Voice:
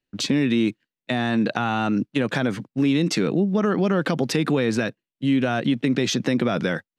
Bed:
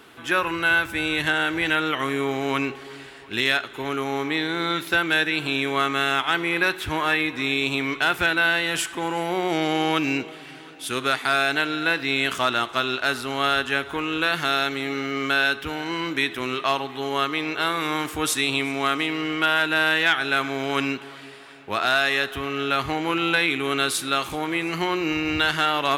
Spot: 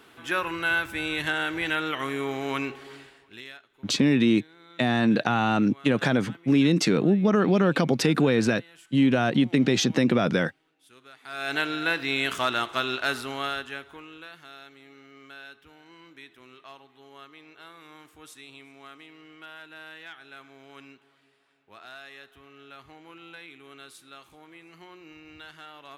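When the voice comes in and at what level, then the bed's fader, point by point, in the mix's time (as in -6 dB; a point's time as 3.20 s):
3.70 s, 0.0 dB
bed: 2.95 s -5 dB
3.66 s -27.5 dB
11.14 s -27.5 dB
11.55 s -3.5 dB
13.18 s -3.5 dB
14.39 s -24 dB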